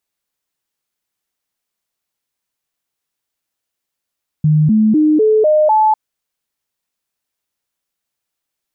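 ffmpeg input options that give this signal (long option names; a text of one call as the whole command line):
ffmpeg -f lavfi -i "aevalsrc='0.398*clip(min(mod(t,0.25),0.25-mod(t,0.25))/0.005,0,1)*sin(2*PI*153*pow(2,floor(t/0.25)/2)*mod(t,0.25))':duration=1.5:sample_rate=44100" out.wav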